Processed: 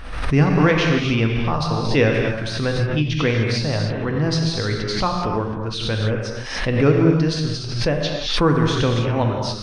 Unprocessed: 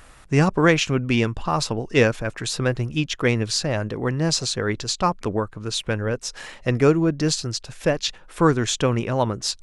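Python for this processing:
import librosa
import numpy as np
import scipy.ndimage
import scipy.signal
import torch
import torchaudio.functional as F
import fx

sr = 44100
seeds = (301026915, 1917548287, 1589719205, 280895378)

y = scipy.signal.savgol_filter(x, 15, 4, mode='constant')
y = fx.low_shelf(y, sr, hz=110.0, db=7.0)
y = fx.rev_gated(y, sr, seeds[0], gate_ms=320, shape='flat', drr_db=0.5)
y = fx.pre_swell(y, sr, db_per_s=57.0)
y = F.gain(torch.from_numpy(y), -2.0).numpy()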